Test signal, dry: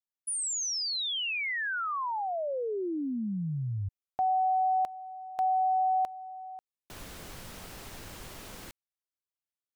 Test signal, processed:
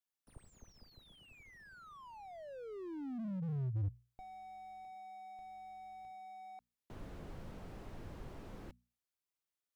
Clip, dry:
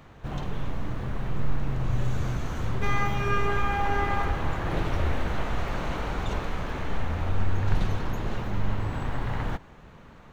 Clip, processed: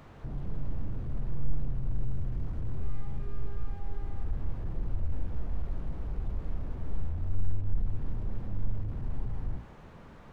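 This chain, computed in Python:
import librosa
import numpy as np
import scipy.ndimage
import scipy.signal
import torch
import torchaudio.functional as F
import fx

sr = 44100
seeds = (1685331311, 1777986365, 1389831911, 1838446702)

y = fx.hum_notches(x, sr, base_hz=60, count=4)
y = fx.slew_limit(y, sr, full_power_hz=2.3)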